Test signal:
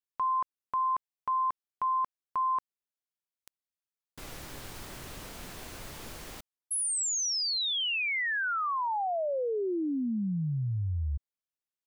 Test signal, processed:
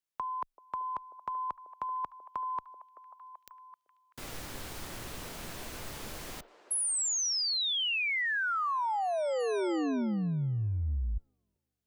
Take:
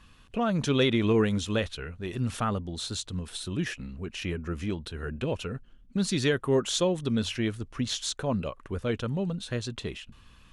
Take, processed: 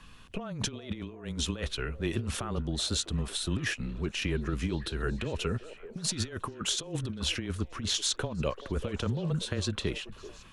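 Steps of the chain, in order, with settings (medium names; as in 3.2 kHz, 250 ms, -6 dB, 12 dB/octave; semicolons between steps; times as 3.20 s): compressor with a negative ratio -31 dBFS, ratio -0.5; frequency shift -18 Hz; repeats whose band climbs or falls 384 ms, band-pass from 500 Hz, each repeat 0.7 oct, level -10 dB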